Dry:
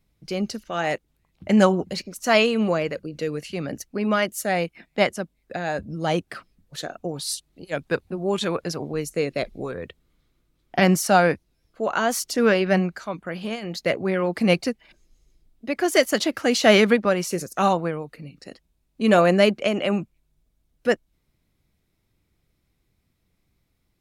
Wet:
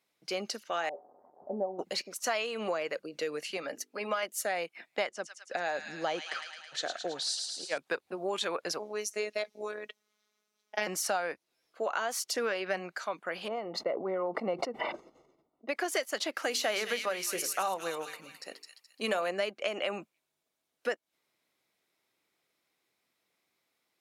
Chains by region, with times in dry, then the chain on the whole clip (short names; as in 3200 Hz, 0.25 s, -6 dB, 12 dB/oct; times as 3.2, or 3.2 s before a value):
0.89–1.79 switching spikes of -10 dBFS + elliptic low-pass 780 Hz, stop band 70 dB + resonator 82 Hz, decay 0.17 s, harmonics odd, mix 70%
3.57–4.23 low shelf 190 Hz -9.5 dB + notches 50/100/150/200/250/300/350/400/450 Hz + notch comb 370 Hz
5.09–7.78 LPF 7700 Hz 24 dB/oct + thin delay 0.108 s, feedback 68%, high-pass 2000 Hz, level -5.5 dB
8.79–10.87 bell 5900 Hz +10.5 dB 0.26 oct + robotiser 211 Hz
13.48–15.69 polynomial smoothing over 65 samples + sustainer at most 36 dB/s
16.42–19.29 bell 13000 Hz +10 dB 0.79 oct + notches 50/100/150/200/250/300/350/400/450 Hz + thin delay 0.212 s, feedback 32%, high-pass 2600 Hz, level -3.5 dB
whole clip: HPF 530 Hz 12 dB/oct; high shelf 11000 Hz -5 dB; compressor 6:1, threshold -29 dBFS